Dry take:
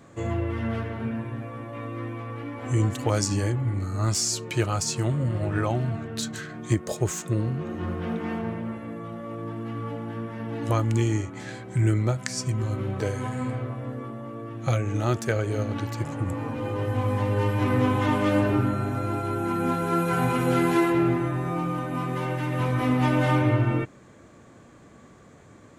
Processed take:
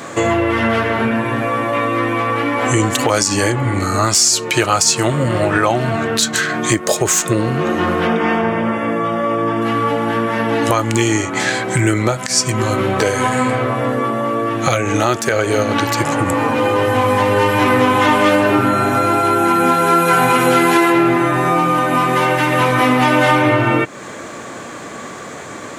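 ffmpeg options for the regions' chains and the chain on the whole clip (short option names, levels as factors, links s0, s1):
-filter_complex "[0:a]asettb=1/sr,asplit=3[s0][s1][s2];[s0]atrim=end=8.074[s3];[s1]atrim=start=8.07:end=9.62,asetpts=PTS-STARTPTS,afade=t=in:d=0.004:c=qsin,afade=t=out:st=1.546:d=0.004:c=qsin,asuperstop=centerf=4100:order=8:qfactor=6.7,highshelf=f=7400:g=-11[s4];[s2]atrim=start=9.616[s5];[s3][s4]acrossfade=d=0.004:c1=hsin:c2=qsin[s6];[s6][s5]acrossfade=d=0.004:c1=qsin:c2=hsin,highpass=f=650:p=1,acompressor=threshold=0.00891:ratio=2.5,alimiter=level_in=22.4:limit=0.891:release=50:level=0:latency=1,volume=0.891"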